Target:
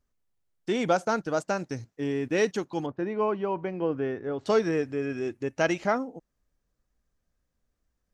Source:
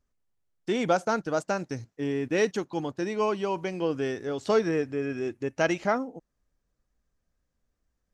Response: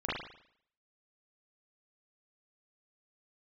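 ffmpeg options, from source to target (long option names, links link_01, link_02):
-filter_complex "[0:a]asettb=1/sr,asplit=3[link_01][link_02][link_03];[link_01]atrim=end=2.864[link_04];[link_02]atrim=start=2.86:end=4.46,asetpts=PTS-STARTPTS,afade=type=in:duration=0.004:curve=qsin,afade=type=out:start_time=1.596:duration=0.004:curve=qsin,lowpass=1800[link_05];[link_03]atrim=start=4.456[link_06];[link_04][link_05]acrossfade=duration=0.004:curve1=hsin:curve2=qsin[link_07];[link_07][link_06]acrossfade=duration=0.004:curve1=qsin:curve2=hsin"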